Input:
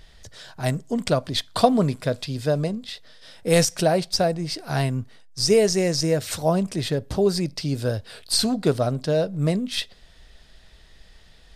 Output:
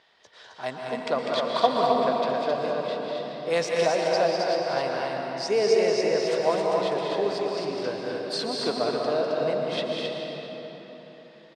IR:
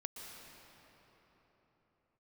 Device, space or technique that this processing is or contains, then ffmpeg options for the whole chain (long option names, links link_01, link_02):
station announcement: -filter_complex "[0:a]highpass=400,lowpass=3900,equalizer=frequency=1000:width_type=o:width=0.58:gain=6,aecho=1:1:198.3|265.3:0.501|0.631[link_01];[1:a]atrim=start_sample=2205[link_02];[link_01][link_02]afir=irnorm=-1:irlink=0"